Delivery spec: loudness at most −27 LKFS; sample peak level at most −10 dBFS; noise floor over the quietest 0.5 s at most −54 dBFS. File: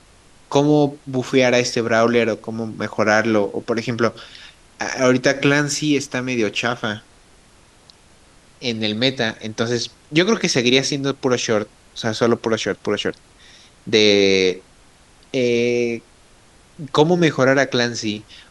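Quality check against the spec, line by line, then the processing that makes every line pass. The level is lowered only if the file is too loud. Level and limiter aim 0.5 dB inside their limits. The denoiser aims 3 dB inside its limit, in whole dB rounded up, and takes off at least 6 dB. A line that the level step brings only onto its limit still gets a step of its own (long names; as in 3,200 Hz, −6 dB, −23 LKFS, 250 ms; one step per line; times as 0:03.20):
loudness −19.0 LKFS: out of spec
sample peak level −1.5 dBFS: out of spec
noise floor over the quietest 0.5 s −51 dBFS: out of spec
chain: level −8.5 dB
brickwall limiter −10.5 dBFS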